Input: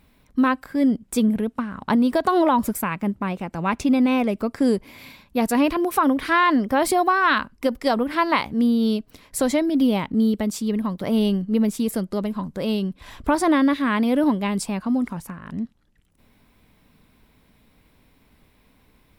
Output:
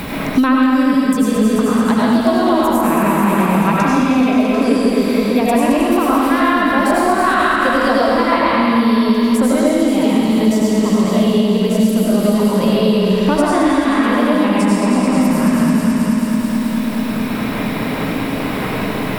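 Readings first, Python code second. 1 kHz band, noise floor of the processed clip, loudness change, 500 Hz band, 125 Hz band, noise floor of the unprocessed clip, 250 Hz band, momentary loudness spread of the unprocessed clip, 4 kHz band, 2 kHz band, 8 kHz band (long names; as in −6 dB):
+7.0 dB, −21 dBFS, +7.0 dB, +9.0 dB, +11.0 dB, −60 dBFS, +8.5 dB, 9 LU, +8.5 dB, +7.0 dB, +6.5 dB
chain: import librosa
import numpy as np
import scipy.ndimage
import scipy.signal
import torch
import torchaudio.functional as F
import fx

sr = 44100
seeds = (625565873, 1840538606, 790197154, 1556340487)

p1 = x + fx.echo_alternate(x, sr, ms=108, hz=810.0, feedback_pct=79, wet_db=-4.0, dry=0)
p2 = fx.rider(p1, sr, range_db=10, speed_s=0.5)
p3 = fx.rev_freeverb(p2, sr, rt60_s=1.7, hf_ratio=0.85, predelay_ms=55, drr_db=-6.5)
p4 = fx.band_squash(p3, sr, depth_pct=100)
y = p4 * librosa.db_to_amplitude(-1.5)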